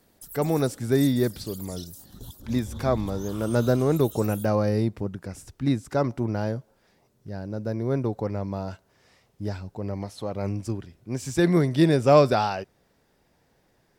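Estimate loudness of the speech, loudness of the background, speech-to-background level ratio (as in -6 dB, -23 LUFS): -25.5 LUFS, -41.0 LUFS, 15.5 dB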